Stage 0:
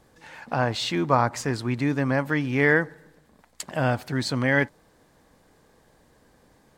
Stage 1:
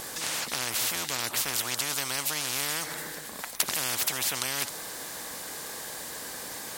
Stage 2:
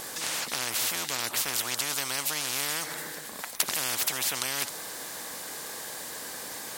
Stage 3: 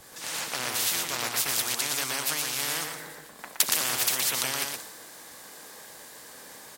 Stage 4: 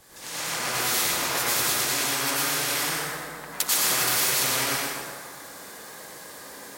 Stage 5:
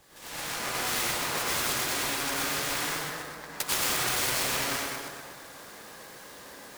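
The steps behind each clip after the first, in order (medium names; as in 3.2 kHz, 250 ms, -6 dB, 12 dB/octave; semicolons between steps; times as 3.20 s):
tilt EQ +4 dB/octave; spectrum-flattening compressor 10:1; trim -1 dB
bass shelf 110 Hz -6.5 dB
delay 119 ms -3.5 dB; three bands expanded up and down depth 100%
plate-style reverb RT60 2 s, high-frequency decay 0.5×, pre-delay 80 ms, DRR -9 dB; trim -4 dB
chunks repeated in reverse 124 ms, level -7.5 dB; delay time shaken by noise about 2.9 kHz, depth 0.034 ms; trim -4.5 dB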